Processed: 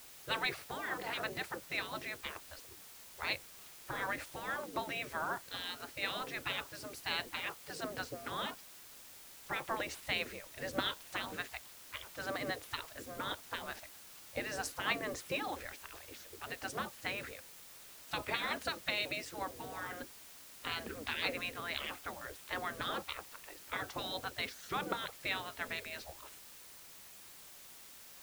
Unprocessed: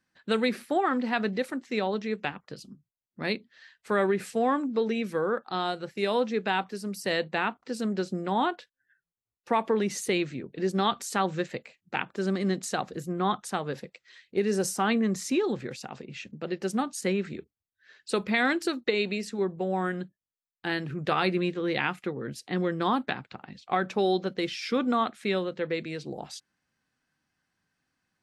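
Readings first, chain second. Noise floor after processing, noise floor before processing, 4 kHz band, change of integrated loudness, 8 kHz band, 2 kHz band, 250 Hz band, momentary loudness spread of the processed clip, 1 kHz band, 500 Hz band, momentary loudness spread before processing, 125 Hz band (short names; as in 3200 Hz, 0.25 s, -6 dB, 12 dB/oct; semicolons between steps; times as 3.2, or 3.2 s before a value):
-55 dBFS, under -85 dBFS, -3.5 dB, -10.5 dB, -7.5 dB, -5.5 dB, -19.0 dB, 15 LU, -11.0 dB, -16.0 dB, 11 LU, -15.5 dB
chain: tilt -3 dB/oct; spectral gate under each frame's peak -20 dB weak; added noise white -57 dBFS; gain +2.5 dB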